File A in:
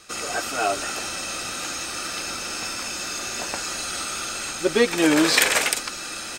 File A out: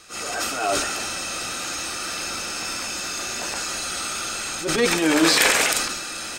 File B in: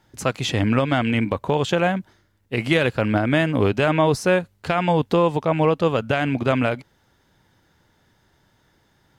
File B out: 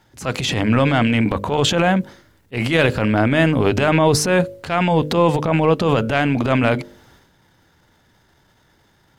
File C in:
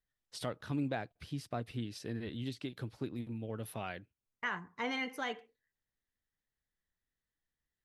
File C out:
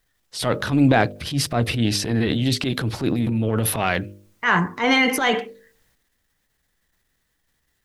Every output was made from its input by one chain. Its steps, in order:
transient designer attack −9 dB, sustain +8 dB
hum removal 50.34 Hz, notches 12
normalise the peak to −2 dBFS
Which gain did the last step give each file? +1.0, +4.5, +20.0 decibels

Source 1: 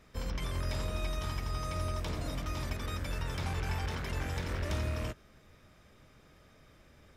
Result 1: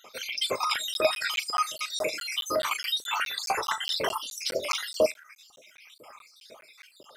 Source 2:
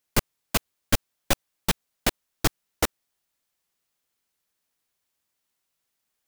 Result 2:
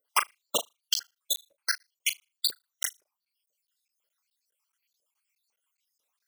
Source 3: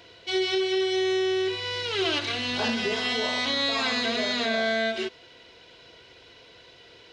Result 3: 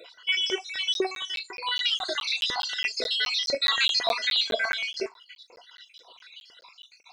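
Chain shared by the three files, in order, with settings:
time-frequency cells dropped at random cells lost 63%
flutter between parallel walls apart 6.6 metres, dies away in 0.26 s
auto-filter high-pass saw up 2 Hz 460–4,700 Hz
reverb reduction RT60 0.55 s
notch filter 1,800 Hz, Q 10
auto-filter notch square 8.6 Hz 720–1,700 Hz
regular buffer underruns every 0.21 s, samples 512, zero, from 0:00.94
normalise the peak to −9 dBFS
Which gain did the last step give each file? +17.5, +3.0, +4.5 decibels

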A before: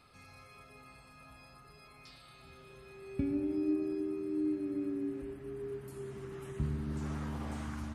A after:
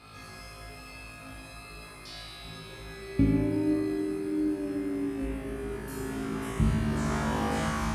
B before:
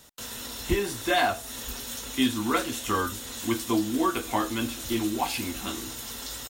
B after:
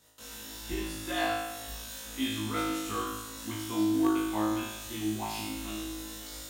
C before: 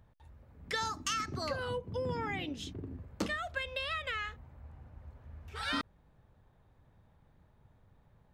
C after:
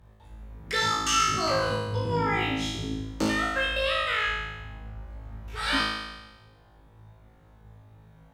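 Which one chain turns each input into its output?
flutter between parallel walls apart 3.2 metres, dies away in 1.1 s
harmonic generator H 3 −17 dB, 5 −29 dB, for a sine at −3 dBFS
normalise the peak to −12 dBFS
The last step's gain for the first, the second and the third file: +10.5, −10.0, +6.5 decibels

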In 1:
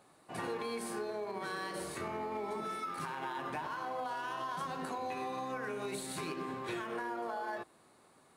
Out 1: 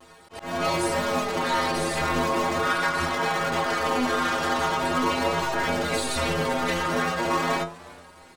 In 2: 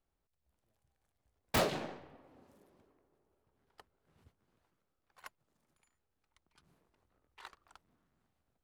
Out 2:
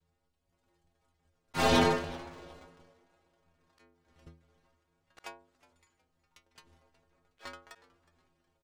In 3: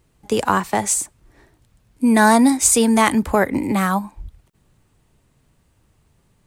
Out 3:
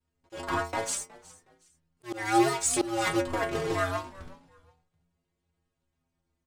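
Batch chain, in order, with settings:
sub-harmonics by changed cycles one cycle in 2, inverted
low-pass filter 7,900 Hz 12 dB per octave
leveller curve on the samples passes 2
stiff-string resonator 81 Hz, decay 0.45 s, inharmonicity 0.008
pitch vibrato 0.42 Hz 22 cents
volume swells 253 ms
echo with shifted repeats 366 ms, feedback 30%, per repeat −87 Hz, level −21 dB
normalise the peak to −12 dBFS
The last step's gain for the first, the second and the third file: +19.5, +20.0, −5.5 decibels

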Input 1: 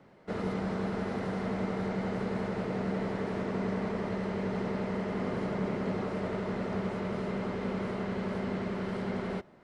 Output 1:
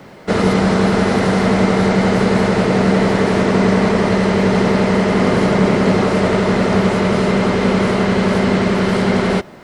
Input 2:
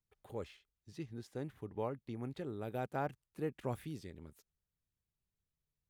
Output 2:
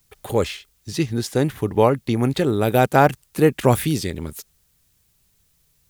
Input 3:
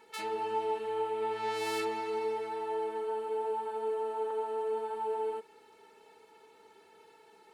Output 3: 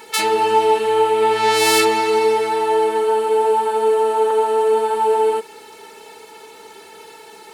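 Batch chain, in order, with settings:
high-shelf EQ 3,400 Hz +9.5 dB
normalise the peak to −1.5 dBFS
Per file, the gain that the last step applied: +18.5, +22.5, +17.0 decibels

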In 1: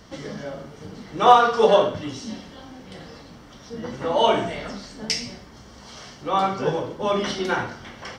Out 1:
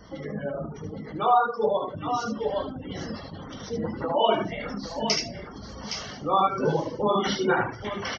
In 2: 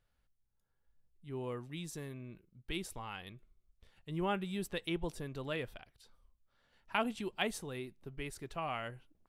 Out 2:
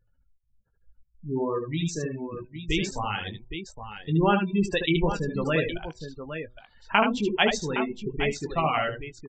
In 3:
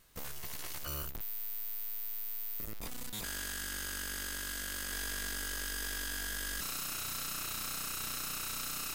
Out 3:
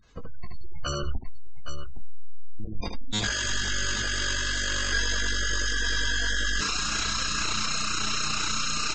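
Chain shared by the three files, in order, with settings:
in parallel at 0 dB: downward compressor, threshold −33 dBFS
on the sum: gate on every frequency bin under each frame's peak −20 dB strong
downsampling to 16,000 Hz
double-tracking delay 19 ms −9 dB
on a send: multi-tap delay 64/75/815 ms −16.5/−4/−9.5 dB
on the sum: automatic gain control gain up to 6 dB
hum removal 123.4 Hz, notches 8
reverb reduction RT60 0.63 s
loudness normalisation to −27 LKFS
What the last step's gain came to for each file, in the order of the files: −6.5, +2.0, +2.0 decibels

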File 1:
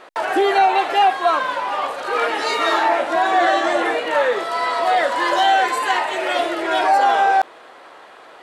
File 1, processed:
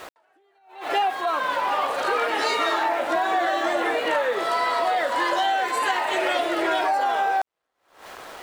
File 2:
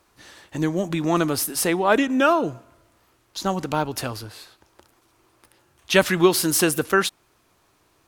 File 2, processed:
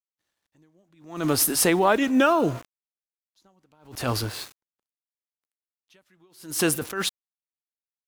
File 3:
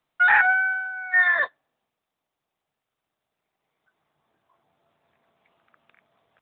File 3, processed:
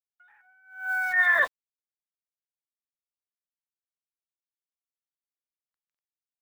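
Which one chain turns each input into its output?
downward compressor 12 to 1, threshold −23 dBFS
centre clipping without the shift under −44.5 dBFS
level that may rise only so fast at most 120 dB per second
loudness normalisation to −23 LKFS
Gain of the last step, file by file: +3.5, +7.5, +6.5 decibels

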